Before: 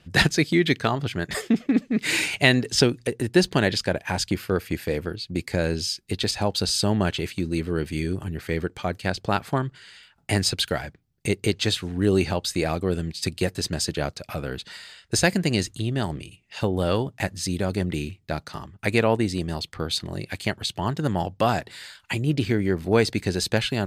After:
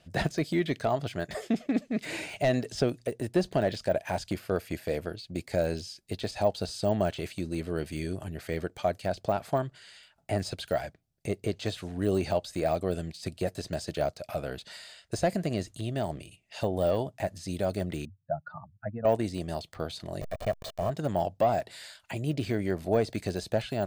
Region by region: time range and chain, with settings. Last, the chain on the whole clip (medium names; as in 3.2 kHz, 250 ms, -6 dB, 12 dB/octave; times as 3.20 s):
18.05–19.05 s: spectral contrast enhancement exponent 2.4 + cabinet simulation 120–2400 Hz, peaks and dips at 410 Hz -6 dB, 800 Hz +3 dB, 1.5 kHz +8 dB + static phaser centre 970 Hz, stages 4
20.21–20.90 s: send-on-delta sampling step -26 dBFS + comb 1.7 ms, depth 63%
whole clip: peaking EQ 640 Hz +13 dB 0.47 oct; de-esser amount 100%; peaking EQ 8.8 kHz +6 dB 2.3 oct; trim -7.5 dB